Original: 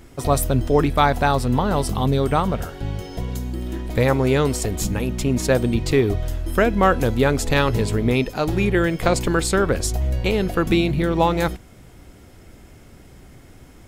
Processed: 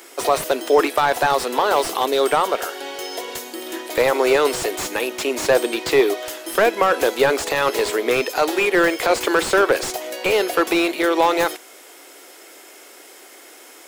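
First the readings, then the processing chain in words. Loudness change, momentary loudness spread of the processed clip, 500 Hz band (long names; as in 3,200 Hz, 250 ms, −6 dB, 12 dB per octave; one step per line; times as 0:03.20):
+1.5 dB, 10 LU, +3.5 dB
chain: Butterworth high-pass 330 Hz 36 dB per octave
spectral tilt +2 dB per octave
brickwall limiter −12 dBFS, peak gain reduction 9.5 dB
slew-rate limiting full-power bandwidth 130 Hz
level +7.5 dB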